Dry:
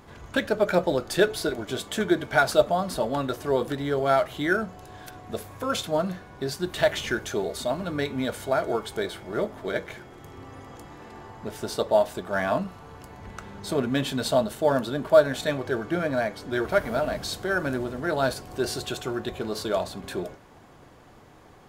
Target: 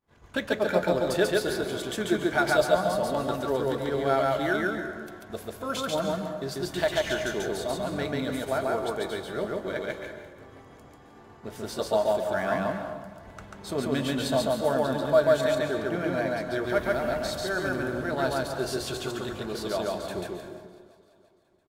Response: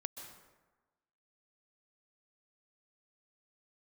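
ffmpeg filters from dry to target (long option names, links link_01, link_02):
-filter_complex "[0:a]agate=range=-33dB:threshold=-37dB:ratio=3:detection=peak,aecho=1:1:341|682|1023|1364:0.0794|0.0469|0.0277|0.0163,asplit=2[link_01][link_02];[1:a]atrim=start_sample=2205,adelay=140[link_03];[link_02][link_03]afir=irnorm=-1:irlink=0,volume=2dB[link_04];[link_01][link_04]amix=inputs=2:normalize=0,volume=-4.5dB"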